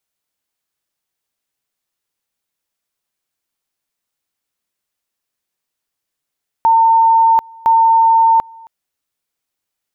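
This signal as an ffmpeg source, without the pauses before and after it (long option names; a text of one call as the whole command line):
ffmpeg -f lavfi -i "aevalsrc='pow(10,(-7-27.5*gte(mod(t,1.01),0.74))/20)*sin(2*PI*906*t)':duration=2.02:sample_rate=44100" out.wav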